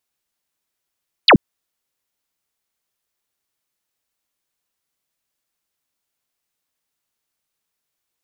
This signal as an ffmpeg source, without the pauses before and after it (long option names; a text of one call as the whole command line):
ffmpeg -f lavfi -i "aevalsrc='0.562*clip(t/0.002,0,1)*clip((0.08-t)/0.002,0,1)*sin(2*PI*4900*0.08/log(140/4900)*(exp(log(140/4900)*t/0.08)-1))':duration=0.08:sample_rate=44100" out.wav